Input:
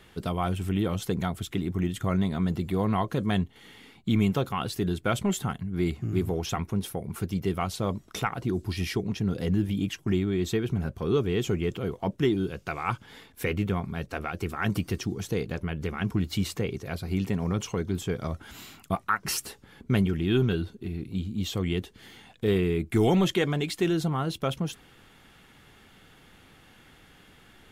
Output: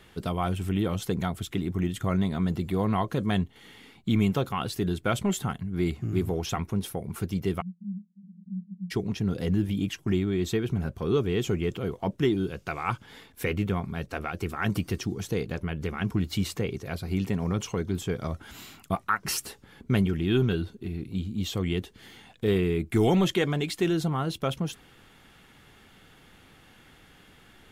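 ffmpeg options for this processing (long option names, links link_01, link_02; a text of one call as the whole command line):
ffmpeg -i in.wav -filter_complex "[0:a]asplit=3[link_01][link_02][link_03];[link_01]afade=type=out:start_time=7.6:duration=0.02[link_04];[link_02]asuperpass=centerf=190:order=8:qfactor=5,afade=type=in:start_time=7.6:duration=0.02,afade=type=out:start_time=8.9:duration=0.02[link_05];[link_03]afade=type=in:start_time=8.9:duration=0.02[link_06];[link_04][link_05][link_06]amix=inputs=3:normalize=0" out.wav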